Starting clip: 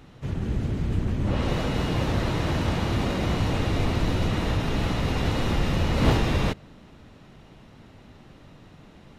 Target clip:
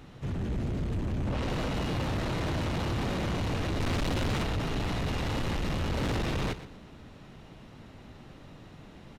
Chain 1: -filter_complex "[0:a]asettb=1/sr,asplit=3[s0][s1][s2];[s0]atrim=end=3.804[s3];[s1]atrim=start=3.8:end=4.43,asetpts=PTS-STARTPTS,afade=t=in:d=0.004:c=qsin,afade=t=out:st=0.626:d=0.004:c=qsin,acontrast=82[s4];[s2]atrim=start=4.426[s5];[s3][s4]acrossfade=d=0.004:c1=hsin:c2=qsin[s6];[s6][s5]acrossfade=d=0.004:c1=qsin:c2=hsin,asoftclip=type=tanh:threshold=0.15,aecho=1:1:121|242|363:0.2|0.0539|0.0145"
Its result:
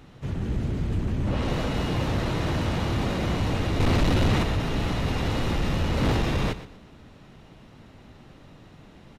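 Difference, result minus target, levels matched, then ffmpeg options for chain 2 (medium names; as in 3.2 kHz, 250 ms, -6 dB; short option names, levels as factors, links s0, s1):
saturation: distortion -8 dB
-filter_complex "[0:a]asettb=1/sr,asplit=3[s0][s1][s2];[s0]atrim=end=3.804[s3];[s1]atrim=start=3.8:end=4.43,asetpts=PTS-STARTPTS,afade=t=in:d=0.004:c=qsin,afade=t=out:st=0.626:d=0.004:c=qsin,acontrast=82[s4];[s2]atrim=start=4.426[s5];[s3][s4]acrossfade=d=0.004:c1=hsin:c2=qsin[s6];[s6][s5]acrossfade=d=0.004:c1=qsin:c2=hsin,asoftclip=type=tanh:threshold=0.0422,aecho=1:1:121|242|363:0.2|0.0539|0.0145"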